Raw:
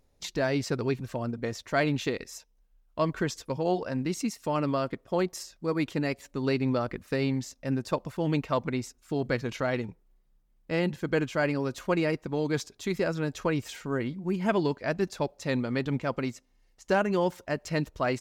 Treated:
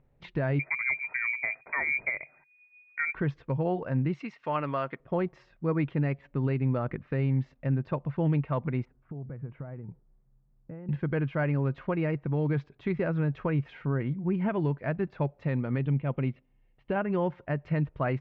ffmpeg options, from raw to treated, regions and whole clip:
-filter_complex "[0:a]asettb=1/sr,asplit=3[a][b][c];[a]atrim=end=0.594[d];[b]atrim=start=0.59:end=3.15,asetpts=PTS-STARTPTS,afade=t=in:d=0.004:c=qsin,afade=t=out:st=2.556:d=0.004:c=qsin,lowshelf=f=210:g=7.5,lowpass=f=2.1k:t=q:w=0.5098,lowpass=f=2.1k:t=q:w=0.6013,lowpass=f=2.1k:t=q:w=0.9,lowpass=f=2.1k:t=q:w=2.563,afreqshift=-2500[e];[c]atrim=start=3.146[f];[d][e]acrossfade=d=0.004:c1=hsin:c2=qsin[g];[g][f]acrossfade=d=0.004:c1=qsin:c2=hsin,asettb=1/sr,asplit=3[h][i][j];[h]atrim=end=4.144[k];[i]atrim=start=4.14:end=5,asetpts=PTS-STARTPTS,afade=t=in:d=0.004:c=qsin,afade=t=out:st=0.856:d=0.004:c=qsin,highpass=f=1.2k:p=1,acontrast=27[l];[j]atrim=start=4.996[m];[k][l]acrossfade=d=0.004:c1=hsin:c2=qsin[n];[n][m]acrossfade=d=0.004:c1=qsin:c2=hsin,asettb=1/sr,asplit=3[o][p][q];[o]atrim=end=8.854[r];[p]atrim=start=8.85:end=10.89,asetpts=PTS-STARTPTS,afade=t=in:d=0.004:c=qsin,afade=t=out:st=2.036:d=0.004:c=qsin,acompressor=threshold=-42dB:ratio=8:attack=3.2:release=140:knee=1:detection=peak,lowpass=1.2k,equalizer=f=99:t=o:w=1.5:g=4.5[s];[q]atrim=start=10.886[t];[r][s]acrossfade=d=0.004:c1=hsin:c2=qsin[u];[u][t]acrossfade=d=0.004:c1=qsin:c2=hsin,asettb=1/sr,asplit=3[v][w][x];[v]atrim=end=15.784[y];[w]atrim=start=15.78:end=16.96,asetpts=PTS-STARTPTS,afade=t=in:d=0.004:c=qsin,afade=t=out:st=1.176:d=0.004:c=qsin,lowpass=f=3k:t=q:w=1.9,equalizer=f=1.6k:w=0.76:g=-7.5[z];[x]atrim=start=16.956[aa];[y][z]acrossfade=d=0.004:c1=hsin:c2=qsin[ab];[ab][aa]acrossfade=d=0.004:c1=qsin:c2=hsin,lowpass=f=2.5k:w=0.5412,lowpass=f=2.5k:w=1.3066,equalizer=f=140:w=2.9:g=12,alimiter=limit=-18.5dB:level=0:latency=1:release=289"

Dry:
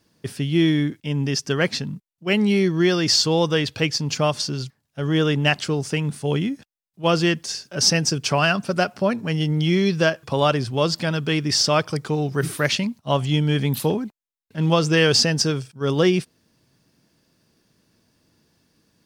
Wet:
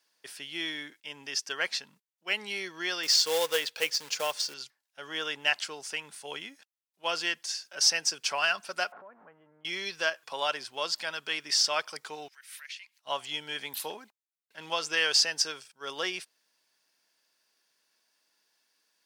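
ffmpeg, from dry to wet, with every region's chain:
-filter_complex "[0:a]asettb=1/sr,asplit=3[a][b][c];[a]atrim=end=3.034[d];[b]atrim=start=3.03:end=4.54,asetpts=PTS-STARTPTS,afade=t=in:d=0.004:c=qsin,afade=t=out:st=1.506:d=0.004:c=qsin,equalizer=f=490:t=o:w=0.25:g=11,acrusher=bits=4:mode=log:mix=0:aa=0.000001[e];[c]atrim=start=4.536[f];[d][e]acrossfade=d=0.004:c1=hsin:c2=qsin[g];[g][f]acrossfade=d=0.004:c1=qsin:c2=hsin,asettb=1/sr,asplit=3[h][i][j];[h]atrim=end=8.924[k];[i]atrim=start=8.92:end=9.65,asetpts=PTS-STARTPTS,afade=t=in:d=0.004:c=qsin,afade=t=out:st=0.726:d=0.004:c=qsin,aeval=exprs='val(0)+0.5*0.0376*sgn(val(0))':c=same,lowpass=f=1.3k:w=0.5412,lowpass=f=1.3k:w=1.3066,acompressor=threshold=-31dB:ratio=12:attack=3.2:release=140:knee=1:detection=peak[l];[j]atrim=start=9.646[m];[k][l]acrossfade=d=0.004:c1=hsin:c2=qsin[n];[n][m]acrossfade=d=0.004:c1=qsin:c2=hsin,asettb=1/sr,asplit=3[o][p][q];[o]atrim=end=12.284[r];[p]atrim=start=12.28:end=13.01,asetpts=PTS-STARTPTS,afade=t=in:d=0.004:c=qsin,afade=t=out:st=0.726:d=0.004:c=qsin,acompressor=threshold=-35dB:ratio=8:attack=3.2:release=140:knee=1:detection=peak,highpass=f=2k:t=q:w=1.8[s];[q]atrim=start=13.006[t];[r][s]acrossfade=d=0.004:c1=hsin:c2=qsin[u];[u][t]acrossfade=d=0.004:c1=qsin:c2=hsin,highpass=950,bandreject=f=1.2k:w=13,volume=-5dB"

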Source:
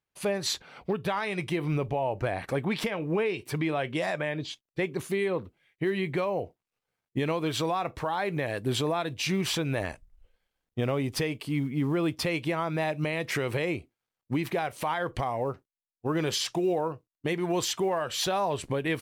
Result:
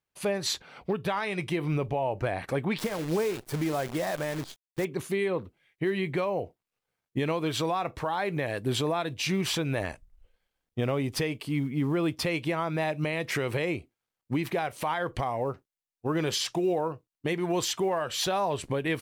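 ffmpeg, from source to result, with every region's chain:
-filter_complex "[0:a]asettb=1/sr,asplit=3[a][b][c];[a]atrim=end=2.784[d];[b]atrim=start=2.78:end=4.85,asetpts=PTS-STARTPTS,afade=t=in:d=0.004:c=qsin,afade=t=out:st=2.066:d=0.004:c=qsin,equalizer=f=2.7k:t=o:w=0.94:g=-9.5,acrusher=bits=7:dc=4:mix=0:aa=0.000001[e];[c]atrim=start=4.846[f];[d][e]acrossfade=d=0.004:c1=hsin:c2=qsin[g];[g][f]acrossfade=d=0.004:c1=qsin:c2=hsin"

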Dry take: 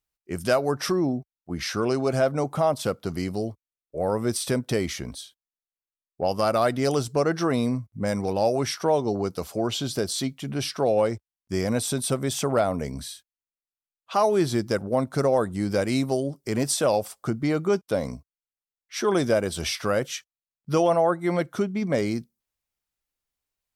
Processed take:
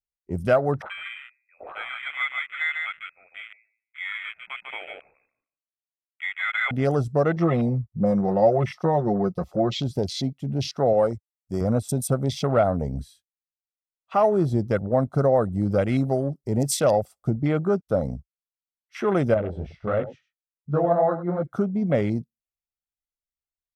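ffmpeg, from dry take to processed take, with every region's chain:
-filter_complex "[0:a]asettb=1/sr,asplit=3[a][b][c];[a]atrim=end=0.824[d];[b]atrim=start=0.82:end=6.71,asetpts=PTS-STARTPTS,afade=t=in:d=0.004:c=qsin,afade=t=out:st=5.886:d=0.004:c=qsin,highpass=f=1.3k:p=1,aecho=1:1:147|294|441:0.631|0.101|0.0162,atrim=end_sample=259749,lowpass=f=2.3k:t=q:w=0.5098,lowpass=f=2.3k:t=q:w=0.6013,lowpass=f=2.3k:t=q:w=0.9,lowpass=f=2.3k:t=q:w=2.563,afreqshift=-2700[e];[c]atrim=start=6.706[f];[d][e]acrossfade=d=0.004:c1=hsin:c2=qsin[g];[g][f]acrossfade=d=0.004:c1=qsin:c2=hsin,asettb=1/sr,asplit=3[h][i][j];[h]atrim=end=7.364[k];[i]atrim=start=7.36:end=9.8,asetpts=PTS-STARTPTS,afade=t=in:d=0.004:c=qsin,afade=t=out:st=2.436:d=0.004:c=qsin,asuperstop=centerf=1500:order=20:qfactor=4.9,equalizer=f=11k:t=o:w=1.5:g=-10,aecho=1:1:5.6:0.73,atrim=end_sample=107604[l];[j]atrim=start=9.796[m];[k][l]acrossfade=d=0.004:c1=hsin:c2=qsin[n];[n][m]acrossfade=d=0.004:c1=qsin:c2=hsin,asettb=1/sr,asplit=3[o][p][q];[o]atrim=end=10.934[r];[p]atrim=start=10.93:end=11.61,asetpts=PTS-STARTPTS,afade=t=in:d=0.004:c=qsin,afade=t=out:st=0.676:d=0.004:c=qsin,highpass=f=180:p=1,highshelf=f=5.9k:g=8.5[s];[q]atrim=start=11.606[t];[r][s]acrossfade=d=0.004:c1=hsin:c2=qsin[u];[u][t]acrossfade=d=0.004:c1=qsin:c2=hsin,asettb=1/sr,asplit=3[v][w][x];[v]atrim=end=19.344[y];[w]atrim=start=19.34:end=21.43,asetpts=PTS-STARTPTS,afade=t=in:d=0.004:c=qsin,afade=t=out:st=2.086:d=0.004:c=qsin,lowpass=2.1k,flanger=delay=19.5:depth=4.5:speed=2.9,aecho=1:1:98:0.211,atrim=end_sample=92169[z];[x]atrim=start=21.426[aa];[y][z]acrossfade=d=0.004:c1=hsin:c2=qsin[ab];[ab][aa]acrossfade=d=0.004:c1=qsin:c2=hsin,afwtdn=0.02,lowshelf=f=280:g=5.5,aecho=1:1:1.5:0.32"

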